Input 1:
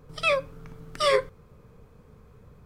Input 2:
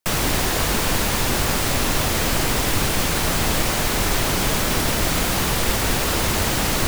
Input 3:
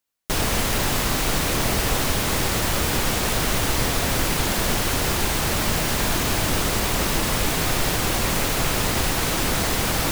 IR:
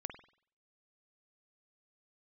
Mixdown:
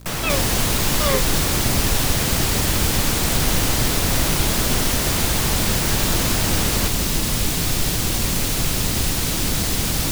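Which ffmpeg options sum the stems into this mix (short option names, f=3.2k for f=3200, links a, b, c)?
-filter_complex "[0:a]aeval=exprs='val(0)+0.0112*(sin(2*PI*60*n/s)+sin(2*PI*2*60*n/s)/2+sin(2*PI*3*60*n/s)/3+sin(2*PI*4*60*n/s)/4+sin(2*PI*5*60*n/s)/5)':c=same,volume=-1.5dB[a];[1:a]acompressor=mode=upward:threshold=-34dB:ratio=2.5,volume=-4dB[b];[2:a]acrossover=split=310|3000[c][d][e];[d]acompressor=threshold=-37dB:ratio=3[f];[c][f][e]amix=inputs=3:normalize=0,volume=3dB[g];[a][b][g]amix=inputs=3:normalize=0,acrusher=bits=8:dc=4:mix=0:aa=0.000001"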